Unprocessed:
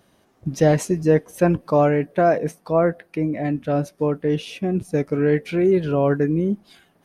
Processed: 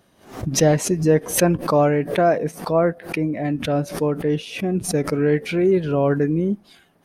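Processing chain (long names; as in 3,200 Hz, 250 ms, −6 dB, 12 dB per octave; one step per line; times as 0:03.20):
background raised ahead of every attack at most 120 dB per second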